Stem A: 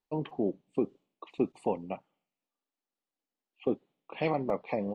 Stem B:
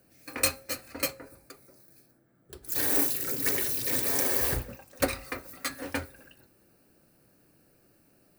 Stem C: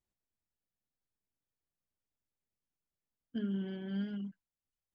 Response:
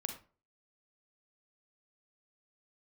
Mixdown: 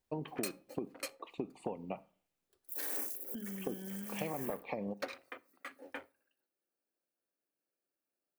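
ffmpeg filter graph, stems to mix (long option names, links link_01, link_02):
-filter_complex "[0:a]acompressor=threshold=-31dB:ratio=6,volume=-3dB,asplit=2[link_01][link_02];[link_02]volume=-12.5dB[link_03];[1:a]afwtdn=0.0112,highpass=380,volume=-11.5dB,asplit=2[link_04][link_05];[link_05]volume=-15.5dB[link_06];[2:a]acompressor=threshold=-46dB:ratio=6,volume=3dB,asplit=2[link_07][link_08];[link_08]apad=whole_len=369968[link_09];[link_04][link_09]sidechaincompress=threshold=-54dB:ratio=8:attack=16:release=551[link_10];[3:a]atrim=start_sample=2205[link_11];[link_03][link_06]amix=inputs=2:normalize=0[link_12];[link_12][link_11]afir=irnorm=-1:irlink=0[link_13];[link_01][link_10][link_07][link_13]amix=inputs=4:normalize=0,acompressor=threshold=-33dB:ratio=6"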